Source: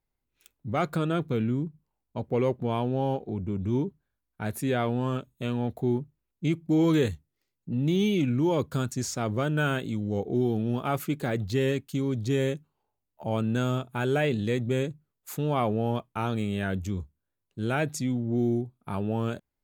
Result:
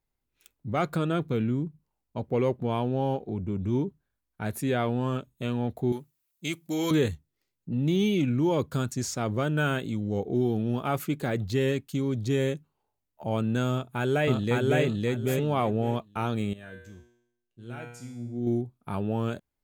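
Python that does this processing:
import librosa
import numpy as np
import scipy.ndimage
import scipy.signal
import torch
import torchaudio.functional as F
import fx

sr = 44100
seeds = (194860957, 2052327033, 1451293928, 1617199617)

y = fx.tilt_eq(x, sr, slope=4.0, at=(5.92, 6.91))
y = fx.echo_throw(y, sr, start_s=13.71, length_s=1.12, ms=560, feedback_pct=20, wet_db=-0.5)
y = fx.comb_fb(y, sr, f0_hz=120.0, decay_s=0.78, harmonics='all', damping=0.0, mix_pct=90, at=(16.53, 18.47))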